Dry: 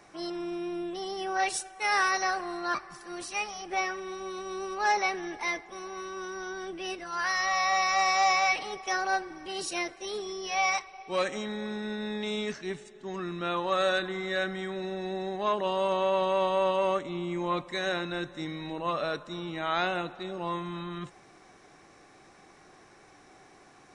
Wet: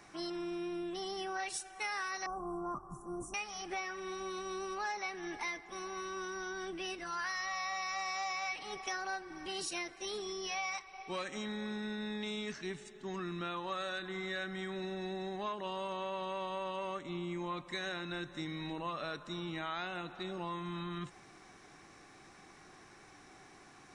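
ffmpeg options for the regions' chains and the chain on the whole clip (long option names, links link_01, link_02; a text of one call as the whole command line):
ffmpeg -i in.wav -filter_complex "[0:a]asettb=1/sr,asplit=3[link_01][link_02][link_03];[link_01]atrim=end=2.264[link_04];[link_02]atrim=start=2.26:end=3.34,asetpts=PTS-STARTPTS,afade=type=in:duration=0.004:curve=qsin,afade=type=out:start_time=1.076:duration=0.004:curve=qsin,asuperstop=centerf=2900:order=12:qfactor=0.53,bass=frequency=250:gain=10,treble=frequency=4000:gain=-5[link_05];[link_03]atrim=start=3.336[link_06];[link_04][link_05]acrossfade=duration=0.004:curve1=hsin:curve2=qsin[link_07];[link_07][link_06]acrossfade=duration=0.004:curve1=qsin:curve2=hsin,equalizer=frequency=550:width=1.4:gain=-6,acompressor=threshold=-37dB:ratio=4" out.wav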